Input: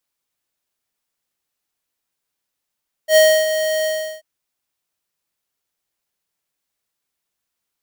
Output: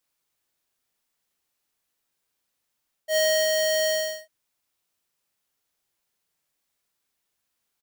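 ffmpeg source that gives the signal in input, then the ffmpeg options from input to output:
-f lavfi -i "aevalsrc='0.335*(2*lt(mod(627*t,1),0.5)-1)':duration=1.137:sample_rate=44100,afade=type=in:duration=0.082,afade=type=out:start_time=0.082:duration=0.292:silence=0.316,afade=type=out:start_time=0.77:duration=0.367"
-af "areverse,acompressor=threshold=-21dB:ratio=6,areverse,aecho=1:1:39|64:0.501|0.188"

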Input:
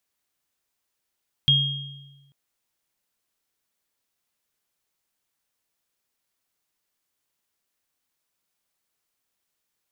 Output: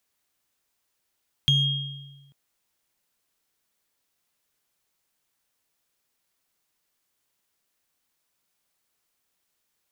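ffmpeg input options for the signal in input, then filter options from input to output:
-f lavfi -i "aevalsrc='0.106*pow(10,-3*t/1.32)*sin(2*PI*139*t)+0.211*pow(10,-3*t/0.93)*sin(2*PI*3250*t)':duration=0.84:sample_rate=44100"
-filter_complex "[0:a]acrossover=split=170[link_01][link_02];[link_02]acompressor=threshold=-23dB:ratio=6[link_03];[link_01][link_03]amix=inputs=2:normalize=0,asplit=2[link_04][link_05];[link_05]asoftclip=type=hard:threshold=-22dB,volume=-7.5dB[link_06];[link_04][link_06]amix=inputs=2:normalize=0"

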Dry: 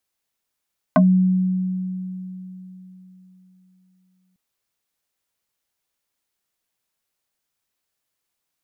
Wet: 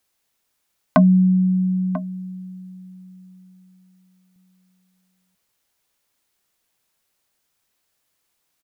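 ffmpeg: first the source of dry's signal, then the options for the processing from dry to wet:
-f lavfi -i "aevalsrc='0.335*pow(10,-3*t/3.75)*sin(2*PI*185*t+2.9*pow(10,-3*t/0.13)*sin(2*PI*2.38*185*t))':duration=3.4:sample_rate=44100"
-filter_complex "[0:a]asplit=2[link_01][link_02];[link_02]acompressor=threshold=-29dB:ratio=6,volume=2dB[link_03];[link_01][link_03]amix=inputs=2:normalize=0,asplit=2[link_04][link_05];[link_05]adelay=991.3,volume=-13dB,highshelf=frequency=4000:gain=-22.3[link_06];[link_04][link_06]amix=inputs=2:normalize=0"

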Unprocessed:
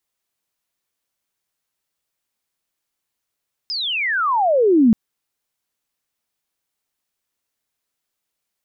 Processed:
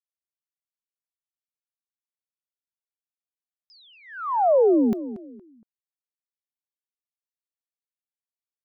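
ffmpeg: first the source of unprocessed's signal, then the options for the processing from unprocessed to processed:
-f lavfi -i "aevalsrc='pow(10,(-22+13.5*t/1.23)/20)*sin(2*PI*5200*1.23/log(210/5200)*(exp(log(210/5200)*t/1.23)-1))':duration=1.23:sample_rate=44100"
-filter_complex "[0:a]agate=range=-31dB:threshold=-18dB:ratio=16:detection=peak,bass=frequency=250:gain=-15,treble=frequency=4000:gain=4,asplit=2[link_01][link_02];[link_02]adelay=233,lowpass=frequency=1500:poles=1,volume=-13dB,asplit=2[link_03][link_04];[link_04]adelay=233,lowpass=frequency=1500:poles=1,volume=0.31,asplit=2[link_05][link_06];[link_06]adelay=233,lowpass=frequency=1500:poles=1,volume=0.31[link_07];[link_01][link_03][link_05][link_07]amix=inputs=4:normalize=0"

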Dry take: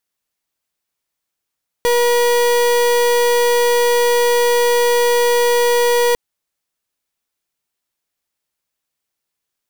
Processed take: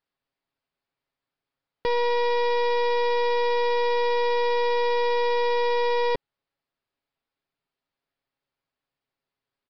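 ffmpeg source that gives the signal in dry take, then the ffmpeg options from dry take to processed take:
-f lavfi -i "aevalsrc='0.2*(2*lt(mod(480*t,1),0.36)-1)':duration=4.3:sample_rate=44100"
-af "highshelf=frequency=2300:gain=-10,aecho=1:1:7.3:0.44,aresample=11025,asoftclip=type=tanh:threshold=-21dB,aresample=44100"

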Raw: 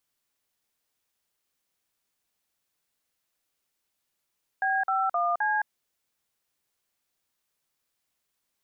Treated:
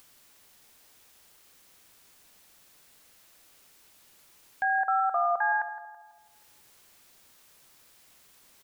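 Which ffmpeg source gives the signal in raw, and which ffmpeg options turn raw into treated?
-f lavfi -i "aevalsrc='0.0531*clip(min(mod(t,0.261),0.215-mod(t,0.261))/0.002,0,1)*(eq(floor(t/0.261),0)*(sin(2*PI*770*mod(t,0.261))+sin(2*PI*1633*mod(t,0.261)))+eq(floor(t/0.261),1)*(sin(2*PI*770*mod(t,0.261))+sin(2*PI*1336*mod(t,0.261)))+eq(floor(t/0.261),2)*(sin(2*PI*697*mod(t,0.261))+sin(2*PI*1209*mod(t,0.261)))+eq(floor(t/0.261),3)*(sin(2*PI*852*mod(t,0.261))+sin(2*PI*1633*mod(t,0.261))))':duration=1.044:sample_rate=44100"
-filter_complex "[0:a]acompressor=mode=upward:threshold=-41dB:ratio=2.5,asplit=2[link_01][link_02];[link_02]adelay=165,lowpass=frequency=1300:poles=1,volume=-9.5dB,asplit=2[link_03][link_04];[link_04]adelay=165,lowpass=frequency=1300:poles=1,volume=0.53,asplit=2[link_05][link_06];[link_06]adelay=165,lowpass=frequency=1300:poles=1,volume=0.53,asplit=2[link_07][link_08];[link_08]adelay=165,lowpass=frequency=1300:poles=1,volume=0.53,asplit=2[link_09][link_10];[link_10]adelay=165,lowpass=frequency=1300:poles=1,volume=0.53,asplit=2[link_11][link_12];[link_12]adelay=165,lowpass=frequency=1300:poles=1,volume=0.53[link_13];[link_03][link_05][link_07][link_09][link_11][link_13]amix=inputs=6:normalize=0[link_14];[link_01][link_14]amix=inputs=2:normalize=0"

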